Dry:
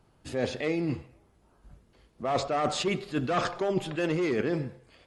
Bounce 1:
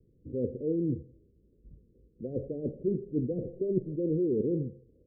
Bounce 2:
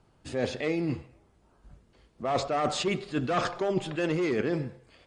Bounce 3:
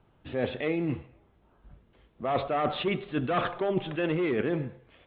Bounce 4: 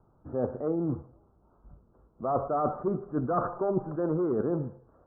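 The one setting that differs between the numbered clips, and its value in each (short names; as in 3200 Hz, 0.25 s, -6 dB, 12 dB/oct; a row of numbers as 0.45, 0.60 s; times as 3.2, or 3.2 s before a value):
steep low-pass, frequency: 510, 10000, 3700, 1400 Hz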